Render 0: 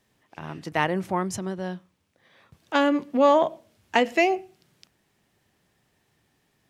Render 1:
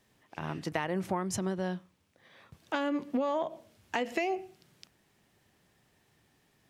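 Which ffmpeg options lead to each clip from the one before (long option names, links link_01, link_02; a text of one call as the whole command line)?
ffmpeg -i in.wav -af "alimiter=limit=-14dB:level=0:latency=1:release=189,acompressor=threshold=-27dB:ratio=6" out.wav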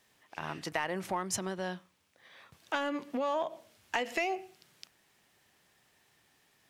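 ffmpeg -i in.wav -filter_complex "[0:a]lowshelf=frequency=480:gain=-11.5,asplit=2[link_01][link_02];[link_02]asoftclip=type=hard:threshold=-30.5dB,volume=-6dB[link_03];[link_01][link_03]amix=inputs=2:normalize=0" out.wav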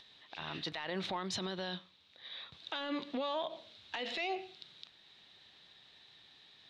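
ffmpeg -i in.wav -af "lowpass=frequency=3800:width_type=q:width=9.4,alimiter=level_in=4dB:limit=-24dB:level=0:latency=1:release=30,volume=-4dB,acompressor=mode=upward:threshold=-56dB:ratio=2.5" out.wav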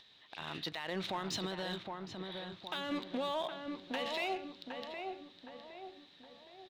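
ffmpeg -i in.wav -filter_complex "[0:a]asplit=2[link_01][link_02];[link_02]acrusher=bits=5:mix=0:aa=0.5,volume=-12dB[link_03];[link_01][link_03]amix=inputs=2:normalize=0,asplit=2[link_04][link_05];[link_05]adelay=765,lowpass=frequency=1600:poles=1,volume=-4dB,asplit=2[link_06][link_07];[link_07]adelay=765,lowpass=frequency=1600:poles=1,volume=0.5,asplit=2[link_08][link_09];[link_09]adelay=765,lowpass=frequency=1600:poles=1,volume=0.5,asplit=2[link_10][link_11];[link_11]adelay=765,lowpass=frequency=1600:poles=1,volume=0.5,asplit=2[link_12][link_13];[link_13]adelay=765,lowpass=frequency=1600:poles=1,volume=0.5,asplit=2[link_14][link_15];[link_15]adelay=765,lowpass=frequency=1600:poles=1,volume=0.5[link_16];[link_04][link_06][link_08][link_10][link_12][link_14][link_16]amix=inputs=7:normalize=0,volume=-2dB" out.wav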